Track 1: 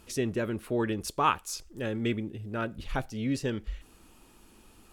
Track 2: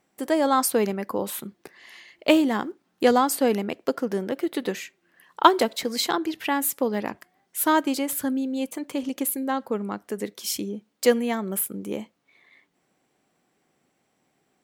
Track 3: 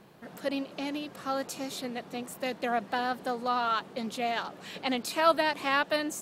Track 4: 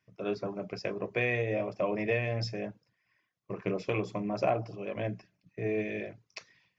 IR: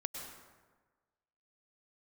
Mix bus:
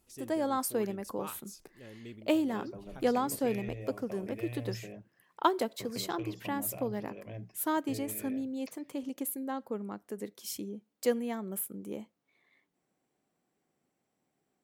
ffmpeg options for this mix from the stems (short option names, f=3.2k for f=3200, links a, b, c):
-filter_complex "[0:a]highshelf=f=4.1k:g=9,volume=-17dB[a];[1:a]volume=-8.5dB[b];[3:a]acrossover=split=160|3000[c][d][e];[d]acompressor=threshold=-38dB:ratio=6[f];[c][f][e]amix=inputs=3:normalize=0,aeval=exprs='0.075*(cos(1*acos(clip(val(0)/0.075,-1,1)))-cos(1*PI/2))+0.0119*(cos(3*acos(clip(val(0)/0.075,-1,1)))-cos(3*PI/2))+0.00299*(cos(5*acos(clip(val(0)/0.075,-1,1)))-cos(5*PI/2))':c=same,adelay=2300,volume=-2dB[g];[a][b][g]amix=inputs=3:normalize=0,equalizer=f=2.7k:w=0.37:g=-5"